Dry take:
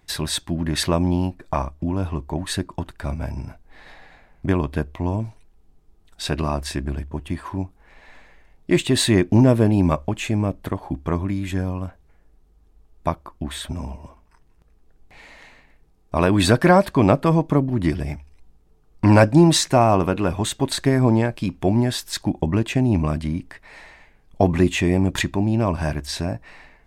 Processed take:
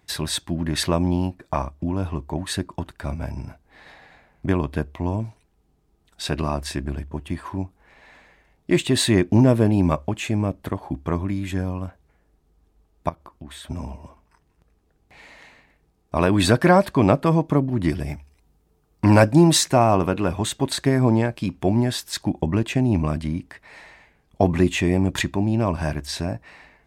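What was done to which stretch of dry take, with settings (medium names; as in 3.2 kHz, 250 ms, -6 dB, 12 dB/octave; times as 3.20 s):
13.09–13.70 s: compression 2.5:1, threshold -38 dBFS
17.88–19.71 s: treble shelf 10 kHz +8 dB
whole clip: high-pass 54 Hz; trim -1 dB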